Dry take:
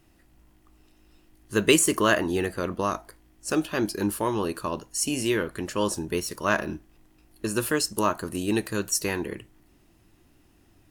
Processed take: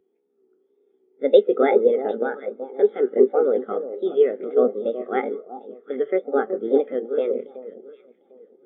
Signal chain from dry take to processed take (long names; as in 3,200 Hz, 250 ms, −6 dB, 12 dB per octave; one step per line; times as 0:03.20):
compressor on every frequency bin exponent 0.6
speed change +26%
in parallel at −2 dB: downward compressor, threshold −33 dBFS, peak gain reduction 19 dB
on the sum: elliptic band-pass filter 190–3,300 Hz
tape wow and flutter 89 cents
delay that swaps between a low-pass and a high-pass 375 ms, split 1,100 Hz, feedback 68%, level −4 dB
on a send at −16 dB: convolution reverb, pre-delay 125 ms
on the sum: every bin expanded away from the loudest bin 2.5 to 1